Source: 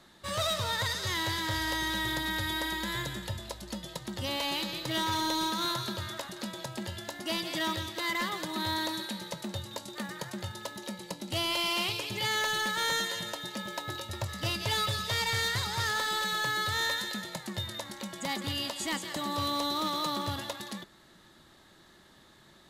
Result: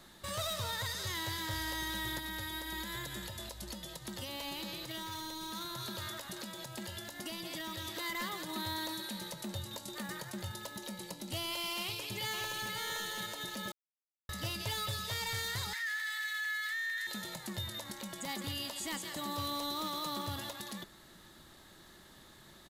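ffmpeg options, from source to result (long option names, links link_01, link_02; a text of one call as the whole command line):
ffmpeg -i in.wav -filter_complex "[0:a]asettb=1/sr,asplit=3[link_01][link_02][link_03];[link_01]atrim=end=2.184[link_04];[link_02]atrim=start=2.18:end=7.97,asetpts=PTS-STARTPTS,afade=type=in:duration=0.004:curve=qsin,afade=type=out:start_time=5.786:duration=0.004:curve=qsin,acrossover=split=260|1200[link_05][link_06][link_07];[link_05]acompressor=threshold=-45dB:ratio=4[link_08];[link_06]acompressor=threshold=-42dB:ratio=4[link_09];[link_07]acompressor=threshold=-38dB:ratio=4[link_10];[link_08][link_09][link_10]amix=inputs=3:normalize=0[link_11];[link_03]atrim=start=7.966[link_12];[link_04][link_11]acrossfade=duration=0.004:curve1=hsin:curve2=qsin[link_13];[link_13][link_12]acrossfade=duration=0.004:curve1=qsin:curve2=hsin,asplit=2[link_14][link_15];[link_15]afade=type=in:start_time=11.81:duration=0.01,afade=type=out:start_time=12.74:duration=0.01,aecho=0:1:520|1040|1560:0.841395|0.168279|0.0336558[link_16];[link_14][link_16]amix=inputs=2:normalize=0,asettb=1/sr,asplit=3[link_17][link_18][link_19];[link_17]atrim=end=15.734[link_20];[link_18]atrim=start=15.73:end=17.07,asetpts=PTS-STARTPTS,afade=type=in:duration=0.004:curve=qsin,afade=type=out:start_time=1.336:duration=0.004:curve=qsin,highpass=frequency=1900:width_type=q:width=9.5[link_21];[link_19]atrim=start=17.066[link_22];[link_20][link_21]acrossfade=duration=0.004:curve1=hsin:curve2=qsin[link_23];[link_23][link_22]acrossfade=duration=0.004:curve1=qsin:curve2=hsin,asplit=3[link_24][link_25][link_26];[link_24]atrim=end=13.72,asetpts=PTS-STARTPTS,afade=type=out:start_time=13.716:duration=0.004:curve=hsin[link_27];[link_25]atrim=start=13.72:end=14.29,asetpts=PTS-STARTPTS,volume=0[link_28];[link_26]atrim=start=14.29,asetpts=PTS-STARTPTS,afade=type=in:duration=0.004:curve=hsin[link_29];[link_27][link_28][link_29]concat=n=3:v=0:a=1,highshelf=frequency=10000:gain=11.5,alimiter=level_in=6.5dB:limit=-24dB:level=0:latency=1:release=135,volume=-6.5dB,lowshelf=frequency=60:gain=7" out.wav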